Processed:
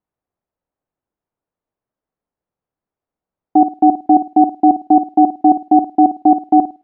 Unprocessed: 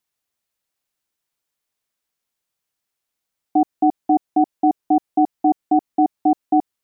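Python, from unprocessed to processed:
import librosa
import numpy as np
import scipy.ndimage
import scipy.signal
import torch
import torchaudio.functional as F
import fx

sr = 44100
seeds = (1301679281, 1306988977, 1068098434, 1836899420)

y = fx.env_lowpass(x, sr, base_hz=820.0, full_db=-12.0)
y = fx.room_flutter(y, sr, wall_m=9.2, rt60_s=0.28)
y = y * 10.0 ** (6.0 / 20.0)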